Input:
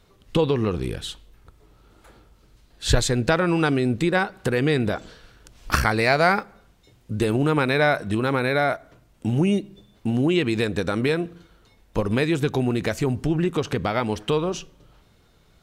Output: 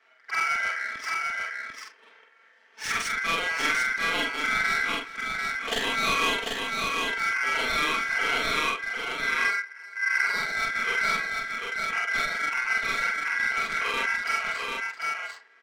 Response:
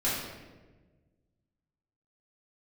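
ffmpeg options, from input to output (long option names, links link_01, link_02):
-filter_complex "[0:a]afftfilt=real='re':imag='-im':win_size=4096:overlap=0.75,highpass=74,aecho=1:1:4.5:0.82,asplit=2[link_01][link_02];[link_02]acompressor=threshold=-36dB:ratio=16,volume=-2dB[link_03];[link_01][link_03]amix=inputs=2:normalize=0,aeval=exprs='val(0)*sin(2*PI*1800*n/s)':channel_layout=same,acrossover=split=280[link_04][link_05];[link_04]acrusher=bits=5:dc=4:mix=0:aa=0.000001[link_06];[link_06][link_05]amix=inputs=2:normalize=0,asoftclip=type=tanh:threshold=-17.5dB,adynamicsmooth=sensitivity=6.5:basefreq=3600,aecho=1:1:387|745:0.119|0.668"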